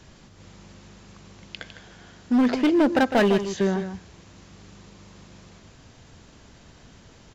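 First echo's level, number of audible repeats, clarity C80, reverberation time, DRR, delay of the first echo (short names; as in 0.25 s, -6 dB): -10.0 dB, 1, none, none, none, 0.155 s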